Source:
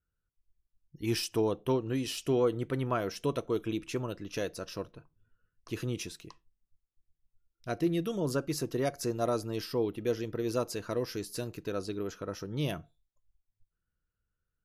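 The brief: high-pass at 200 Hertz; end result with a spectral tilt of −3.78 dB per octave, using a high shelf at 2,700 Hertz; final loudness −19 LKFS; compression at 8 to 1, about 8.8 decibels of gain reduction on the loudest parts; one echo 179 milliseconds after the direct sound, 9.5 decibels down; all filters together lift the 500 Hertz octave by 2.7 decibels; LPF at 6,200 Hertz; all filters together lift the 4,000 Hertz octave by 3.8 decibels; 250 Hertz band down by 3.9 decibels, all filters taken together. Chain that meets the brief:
high-pass filter 200 Hz
low-pass filter 6,200 Hz
parametric band 250 Hz −7.5 dB
parametric band 500 Hz +5.5 dB
high-shelf EQ 2,700 Hz +3 dB
parametric band 4,000 Hz +3.5 dB
downward compressor 8 to 1, threshold −29 dBFS
single-tap delay 179 ms −9.5 dB
level +16.5 dB

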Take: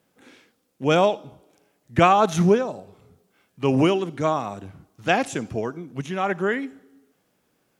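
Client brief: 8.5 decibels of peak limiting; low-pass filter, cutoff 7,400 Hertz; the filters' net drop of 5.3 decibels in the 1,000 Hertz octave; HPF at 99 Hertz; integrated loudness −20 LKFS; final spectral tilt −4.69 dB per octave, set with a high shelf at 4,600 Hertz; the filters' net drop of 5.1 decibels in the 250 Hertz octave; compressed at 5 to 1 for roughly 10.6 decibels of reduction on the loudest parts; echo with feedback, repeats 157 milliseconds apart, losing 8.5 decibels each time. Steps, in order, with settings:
high-pass filter 99 Hz
low-pass filter 7,400 Hz
parametric band 250 Hz −7 dB
parametric band 1,000 Hz −7.5 dB
high-shelf EQ 4,600 Hz +7.5 dB
downward compressor 5 to 1, threshold −27 dBFS
brickwall limiter −22.5 dBFS
repeating echo 157 ms, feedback 38%, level −8.5 dB
level +14.5 dB

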